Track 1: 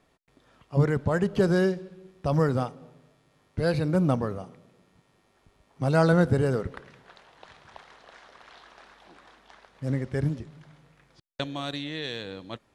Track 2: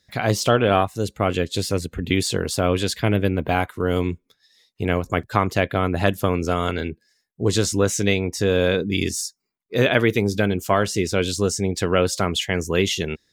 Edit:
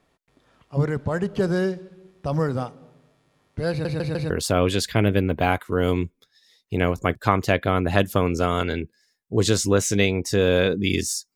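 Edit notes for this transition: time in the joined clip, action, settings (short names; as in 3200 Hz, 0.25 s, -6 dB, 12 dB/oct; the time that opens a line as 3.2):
track 1
3.7 stutter in place 0.15 s, 4 plays
4.3 switch to track 2 from 2.38 s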